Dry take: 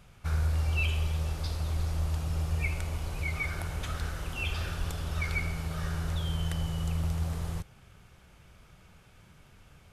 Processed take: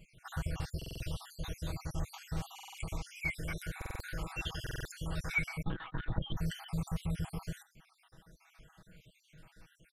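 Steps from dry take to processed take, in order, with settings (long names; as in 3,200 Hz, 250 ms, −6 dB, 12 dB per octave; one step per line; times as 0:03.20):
time-frequency cells dropped at random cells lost 63%
0:05.62–0:06.37: linear-prediction vocoder at 8 kHz pitch kept
comb filter 6.2 ms, depth 70%
buffer that repeats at 0:00.77/0:02.54/0:03.77/0:04.62, samples 2,048, times 4
level −1.5 dB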